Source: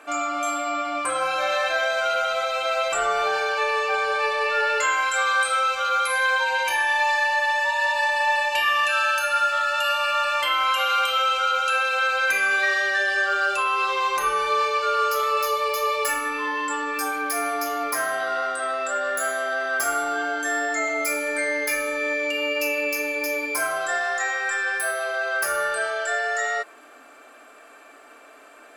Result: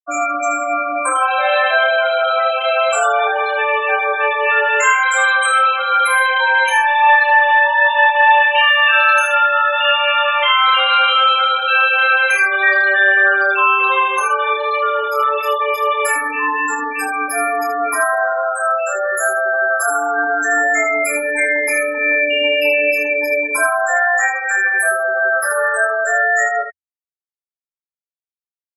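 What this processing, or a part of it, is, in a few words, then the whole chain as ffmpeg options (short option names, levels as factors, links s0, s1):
slapback doubling: -filter_complex "[0:a]afftfilt=real='re*gte(hypot(re,im),0.1)':imag='im*gte(hypot(re,im),0.1)':win_size=1024:overlap=0.75,equalizer=f=86:w=5.4:g=12.5,asplit=3[s0][s1][s2];[s1]adelay=26,volume=0.668[s3];[s2]adelay=77,volume=0.398[s4];[s0][s3][s4]amix=inputs=3:normalize=0,volume=2.24"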